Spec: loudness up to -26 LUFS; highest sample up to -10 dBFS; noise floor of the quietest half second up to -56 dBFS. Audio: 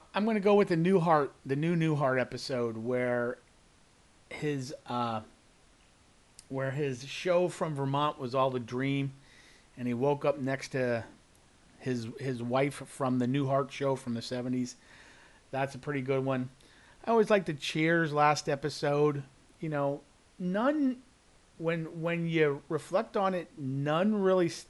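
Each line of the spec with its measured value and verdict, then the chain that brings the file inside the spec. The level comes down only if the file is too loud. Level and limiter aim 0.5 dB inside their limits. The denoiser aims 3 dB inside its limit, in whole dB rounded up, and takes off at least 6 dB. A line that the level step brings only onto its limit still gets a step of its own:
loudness -31.0 LUFS: pass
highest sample -12.5 dBFS: pass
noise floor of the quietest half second -62 dBFS: pass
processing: none needed

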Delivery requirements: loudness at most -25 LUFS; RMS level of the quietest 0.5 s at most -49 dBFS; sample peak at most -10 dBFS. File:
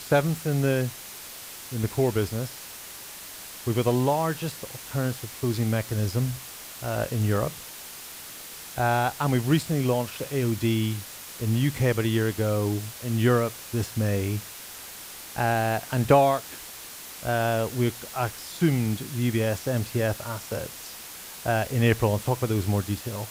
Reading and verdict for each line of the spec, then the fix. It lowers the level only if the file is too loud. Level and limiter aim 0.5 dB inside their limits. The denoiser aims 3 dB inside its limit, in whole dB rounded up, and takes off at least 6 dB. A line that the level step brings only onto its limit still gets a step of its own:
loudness -26.5 LUFS: pass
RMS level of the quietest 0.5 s -41 dBFS: fail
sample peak -7.5 dBFS: fail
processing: noise reduction 11 dB, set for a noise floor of -41 dBFS; peak limiter -10.5 dBFS

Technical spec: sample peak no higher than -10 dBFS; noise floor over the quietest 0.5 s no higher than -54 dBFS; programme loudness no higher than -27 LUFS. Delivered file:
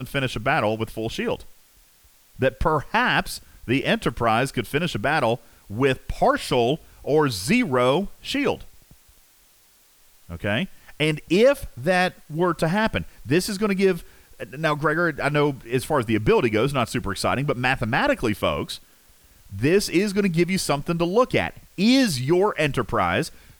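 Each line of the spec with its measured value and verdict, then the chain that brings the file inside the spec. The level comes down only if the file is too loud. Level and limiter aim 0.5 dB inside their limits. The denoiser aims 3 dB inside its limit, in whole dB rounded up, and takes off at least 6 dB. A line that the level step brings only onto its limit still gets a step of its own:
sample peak -6.5 dBFS: fail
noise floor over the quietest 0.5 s -57 dBFS: pass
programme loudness -22.5 LUFS: fail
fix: trim -5 dB

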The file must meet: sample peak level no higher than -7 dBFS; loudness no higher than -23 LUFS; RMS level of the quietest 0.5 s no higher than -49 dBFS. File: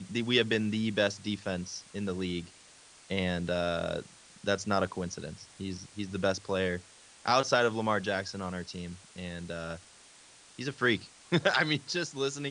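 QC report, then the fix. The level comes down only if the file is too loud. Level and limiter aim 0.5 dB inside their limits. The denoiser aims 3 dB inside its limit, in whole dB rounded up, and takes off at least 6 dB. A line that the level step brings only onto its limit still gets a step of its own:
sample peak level -9.5 dBFS: pass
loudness -31.5 LUFS: pass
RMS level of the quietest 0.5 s -56 dBFS: pass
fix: none needed

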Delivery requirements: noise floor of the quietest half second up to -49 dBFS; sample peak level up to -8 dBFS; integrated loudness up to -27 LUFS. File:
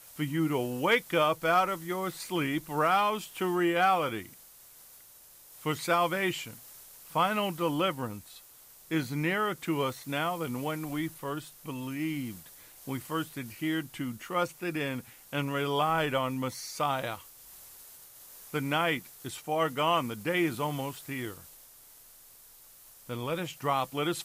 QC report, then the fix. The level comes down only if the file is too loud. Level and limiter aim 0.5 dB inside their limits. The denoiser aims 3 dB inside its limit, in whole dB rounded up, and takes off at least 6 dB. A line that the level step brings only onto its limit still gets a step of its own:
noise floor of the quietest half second -55 dBFS: pass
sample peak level -14.5 dBFS: pass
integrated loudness -30.5 LUFS: pass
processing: none needed

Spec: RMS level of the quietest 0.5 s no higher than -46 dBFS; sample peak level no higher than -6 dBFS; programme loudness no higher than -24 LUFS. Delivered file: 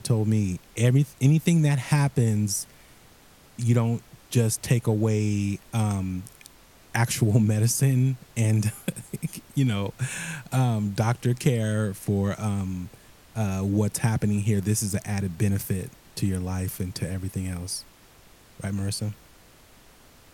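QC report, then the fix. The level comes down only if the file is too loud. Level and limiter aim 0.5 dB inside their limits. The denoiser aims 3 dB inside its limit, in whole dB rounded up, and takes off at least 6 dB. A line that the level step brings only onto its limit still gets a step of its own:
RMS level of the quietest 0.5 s -53 dBFS: pass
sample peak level -8.5 dBFS: pass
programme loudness -25.5 LUFS: pass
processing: none needed

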